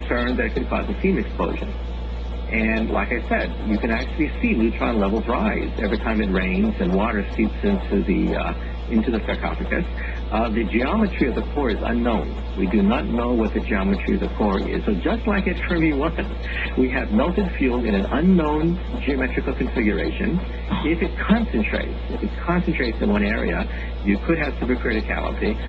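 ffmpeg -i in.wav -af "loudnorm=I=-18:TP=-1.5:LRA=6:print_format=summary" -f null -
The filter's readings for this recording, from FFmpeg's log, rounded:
Input Integrated:    -22.3 LUFS
Input True Peak:      -3.7 dBTP
Input LRA:             1.7 LU
Input Threshold:     -32.3 LUFS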